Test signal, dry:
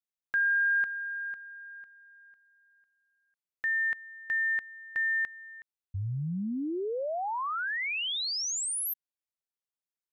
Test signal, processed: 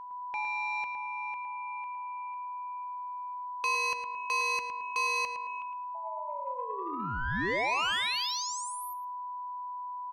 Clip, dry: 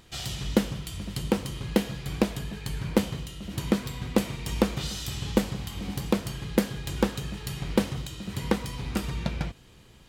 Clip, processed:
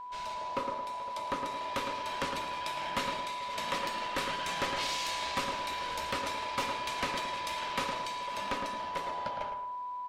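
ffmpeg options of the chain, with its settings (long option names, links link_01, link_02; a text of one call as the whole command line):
ffmpeg -i in.wav -filter_complex "[0:a]highpass=frequency=160:poles=1,aemphasis=mode=reproduction:type=75fm,bandreject=frequency=50:width_type=h:width=6,bandreject=frequency=100:width_type=h:width=6,bandreject=frequency=150:width_type=h:width=6,bandreject=frequency=200:width_type=h:width=6,bandreject=frequency=250:width_type=h:width=6,bandreject=frequency=300:width_type=h:width=6,bandreject=frequency=350:width_type=h:width=6,bandreject=frequency=400:width_type=h:width=6,bandreject=frequency=450:width_type=h:width=6,bandreject=frequency=500:width_type=h:width=6,acrossover=split=260|1100[link_01][link_02][link_03];[link_03]dynaudnorm=framelen=110:gausssize=31:maxgain=14.5dB[link_04];[link_01][link_02][link_04]amix=inputs=3:normalize=0,aeval=exprs='val(0)*sin(2*PI*760*n/s)':channel_layout=same,asoftclip=type=tanh:threshold=-22.5dB,aeval=exprs='val(0)+0.0141*sin(2*PI*990*n/s)':channel_layout=same,asplit=2[link_05][link_06];[link_06]adelay=110,lowpass=frequency=2300:poles=1,volume=-5.5dB,asplit=2[link_07][link_08];[link_08]adelay=110,lowpass=frequency=2300:poles=1,volume=0.39,asplit=2[link_09][link_10];[link_10]adelay=110,lowpass=frequency=2300:poles=1,volume=0.39,asplit=2[link_11][link_12];[link_12]adelay=110,lowpass=frequency=2300:poles=1,volume=0.39,asplit=2[link_13][link_14];[link_14]adelay=110,lowpass=frequency=2300:poles=1,volume=0.39[link_15];[link_05][link_07][link_09][link_11][link_13][link_15]amix=inputs=6:normalize=0,volume=-3dB" -ar 44100 -c:a libmp3lame -b:a 64k out.mp3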